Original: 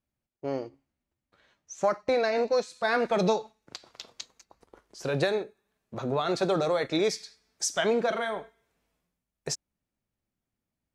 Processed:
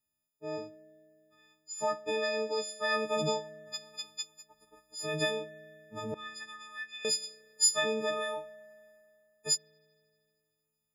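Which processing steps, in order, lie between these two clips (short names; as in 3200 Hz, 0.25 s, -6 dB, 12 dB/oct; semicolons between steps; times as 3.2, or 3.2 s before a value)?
frequency quantiser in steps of 6 st; 6.14–7.05 ladder high-pass 1500 Hz, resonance 80%; spring tank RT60 2.5 s, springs 32 ms, chirp 65 ms, DRR 19.5 dB; gain -8 dB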